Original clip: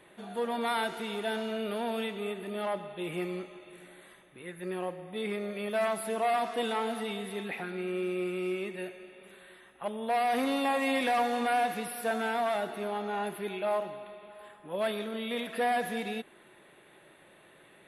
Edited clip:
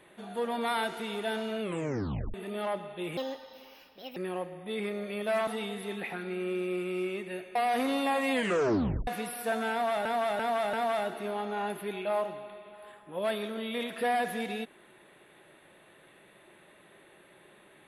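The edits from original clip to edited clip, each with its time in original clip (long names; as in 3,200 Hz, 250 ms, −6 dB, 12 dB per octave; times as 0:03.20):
0:01.61: tape stop 0.73 s
0:03.17–0:04.63: play speed 147%
0:05.94–0:06.95: remove
0:09.03–0:10.14: remove
0:10.91: tape stop 0.75 s
0:12.30–0:12.64: repeat, 4 plays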